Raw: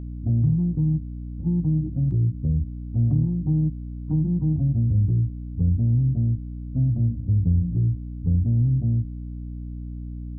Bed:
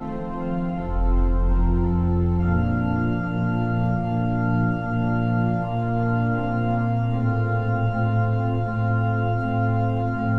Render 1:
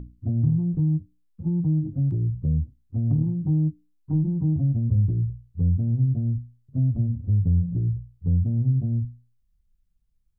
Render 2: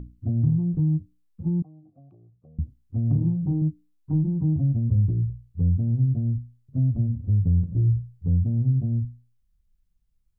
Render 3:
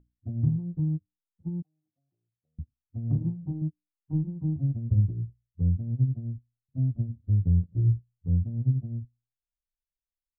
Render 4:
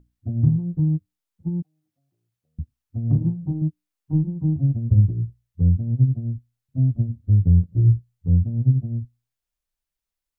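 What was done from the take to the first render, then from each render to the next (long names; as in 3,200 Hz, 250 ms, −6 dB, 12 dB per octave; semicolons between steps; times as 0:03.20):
mains-hum notches 60/120/180/240/300 Hz
0:01.62–0:02.59: formant filter a; 0:03.11–0:03.62: double-tracking delay 36 ms −5 dB; 0:07.61–0:08.29: double-tracking delay 26 ms −4 dB
expander for the loud parts 2.5 to 1, over −37 dBFS
level +7 dB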